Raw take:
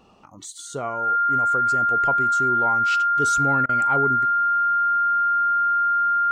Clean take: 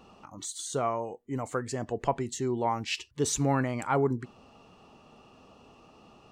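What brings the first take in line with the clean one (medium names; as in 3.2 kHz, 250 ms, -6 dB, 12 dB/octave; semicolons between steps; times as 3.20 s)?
band-stop 1.4 kHz, Q 30; interpolate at 3.66 s, 30 ms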